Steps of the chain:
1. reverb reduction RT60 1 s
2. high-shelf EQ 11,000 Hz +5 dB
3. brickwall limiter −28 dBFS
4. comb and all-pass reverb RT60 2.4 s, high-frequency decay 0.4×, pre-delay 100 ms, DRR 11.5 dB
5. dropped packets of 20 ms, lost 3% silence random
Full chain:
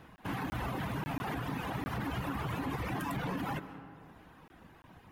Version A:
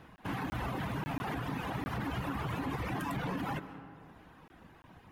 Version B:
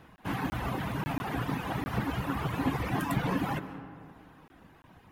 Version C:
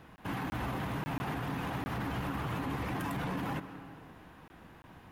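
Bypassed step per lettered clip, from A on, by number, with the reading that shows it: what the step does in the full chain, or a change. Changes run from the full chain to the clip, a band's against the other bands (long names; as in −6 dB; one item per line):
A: 2, 8 kHz band −1.5 dB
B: 3, average gain reduction 2.5 dB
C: 1, change in momentary loudness spread +2 LU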